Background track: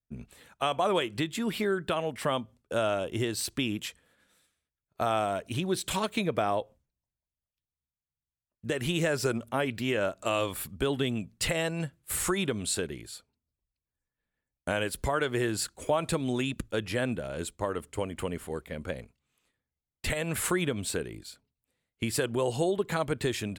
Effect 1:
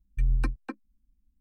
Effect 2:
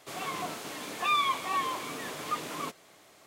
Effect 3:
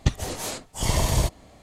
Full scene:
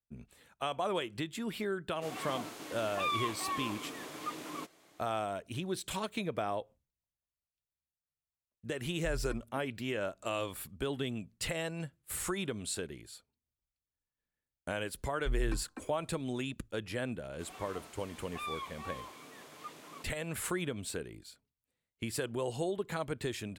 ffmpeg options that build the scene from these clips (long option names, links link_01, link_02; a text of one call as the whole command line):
ffmpeg -i bed.wav -i cue0.wav -i cue1.wav -filter_complex "[2:a]asplit=2[link_01][link_02];[1:a]asplit=2[link_03][link_04];[0:a]volume=-7dB[link_05];[link_01]equalizer=frequency=310:width_type=o:width=0.33:gain=7.5[link_06];[link_04]bandreject=frequency=95.76:width_type=h:width=4,bandreject=frequency=191.52:width_type=h:width=4,bandreject=frequency=287.28:width_type=h:width=4,bandreject=frequency=383.04:width_type=h:width=4,bandreject=frequency=478.8:width_type=h:width=4,bandreject=frequency=574.56:width_type=h:width=4,bandreject=frequency=670.32:width_type=h:width=4,bandreject=frequency=766.08:width_type=h:width=4,bandreject=frequency=861.84:width_type=h:width=4,bandreject=frequency=957.6:width_type=h:width=4,bandreject=frequency=1053.36:width_type=h:width=4,bandreject=frequency=1149.12:width_type=h:width=4,bandreject=frequency=1244.88:width_type=h:width=4,bandreject=frequency=1340.64:width_type=h:width=4,bandreject=frequency=1436.4:width_type=h:width=4,bandreject=frequency=1532.16:width_type=h:width=4,bandreject=frequency=1627.92:width_type=h:width=4,bandreject=frequency=1723.68:width_type=h:width=4[link_07];[link_06]atrim=end=3.26,asetpts=PTS-STARTPTS,volume=-7dB,afade=type=in:duration=0.004:curve=hsin,afade=type=out:start_time=3.256:duration=0.004:curve=hsin,adelay=1950[link_08];[link_03]atrim=end=1.4,asetpts=PTS-STARTPTS,volume=-15dB,afade=type=in:duration=0.004:curve=hsin,afade=type=out:start_time=1.396:duration=0.004:curve=hsin,adelay=8870[link_09];[link_07]atrim=end=1.4,asetpts=PTS-STARTPTS,volume=-8.5dB,afade=type=in:duration=0.004:curve=hsin,afade=type=out:start_time=1.396:duration=0.004:curve=hsin,adelay=665028S[link_10];[link_02]atrim=end=3.26,asetpts=PTS-STARTPTS,volume=-14dB,afade=type=in:duration=0.004:curve=hsin,afade=type=out:start_time=3.256:duration=0.004:curve=hsin,adelay=17330[link_11];[link_05][link_08][link_09][link_10][link_11]amix=inputs=5:normalize=0" out.wav